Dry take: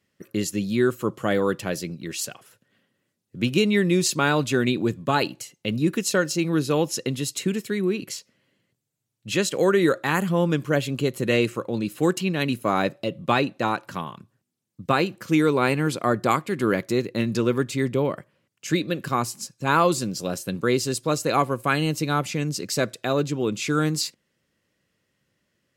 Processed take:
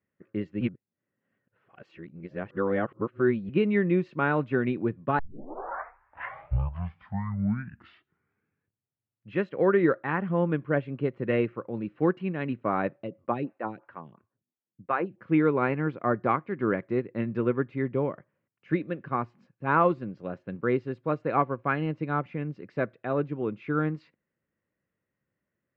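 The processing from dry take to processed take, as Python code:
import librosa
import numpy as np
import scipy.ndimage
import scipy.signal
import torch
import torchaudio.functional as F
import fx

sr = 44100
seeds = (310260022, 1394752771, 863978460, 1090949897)

y = fx.stagger_phaser(x, sr, hz=2.9, at=(13.06, 15.18), fade=0.02)
y = fx.edit(y, sr, fx.reverse_span(start_s=0.61, length_s=2.88),
    fx.tape_start(start_s=5.19, length_s=4.11), tone=tone)
y = scipy.signal.sosfilt(scipy.signal.butter(4, 2100.0, 'lowpass', fs=sr, output='sos'), y)
y = fx.upward_expand(y, sr, threshold_db=-32.0, expansion=1.5)
y = F.gain(torch.from_numpy(y), -2.0).numpy()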